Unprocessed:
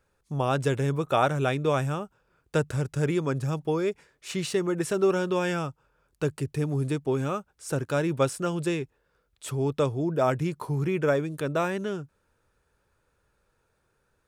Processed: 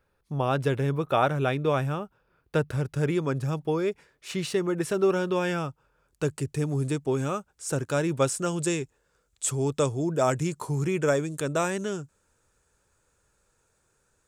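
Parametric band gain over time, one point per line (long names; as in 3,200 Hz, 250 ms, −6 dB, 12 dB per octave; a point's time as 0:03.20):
parametric band 7,400 Hz 0.74 octaves
0:02.61 −9.5 dB
0:03.13 −2.5 dB
0:05.63 −2.5 dB
0:06.36 +7 dB
0:08.22 +7 dB
0:08.70 +15 dB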